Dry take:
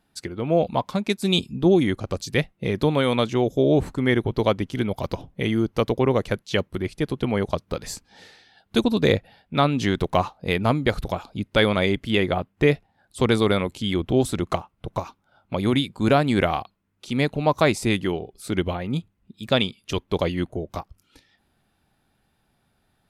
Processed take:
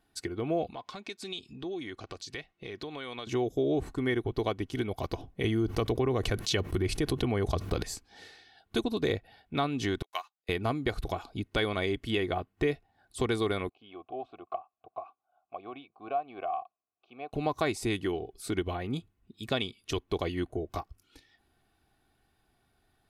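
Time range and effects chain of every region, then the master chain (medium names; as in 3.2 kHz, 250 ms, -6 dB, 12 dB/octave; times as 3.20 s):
0.72–3.27 s: low-pass 4.6 kHz + tilt EQ +2.5 dB/octave + compression 3:1, threshold -36 dBFS
5.44–7.83 s: peaking EQ 78 Hz +5.5 dB 2.2 oct + level flattener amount 70%
10.02–10.49 s: high-pass 1.4 kHz + treble shelf 11 kHz +8.5 dB + upward expansion 2.5:1, over -49 dBFS
13.69–17.33 s: vowel filter a + distance through air 250 m
whole clip: comb 2.7 ms, depth 46%; compression 2:1, threshold -26 dBFS; trim -4 dB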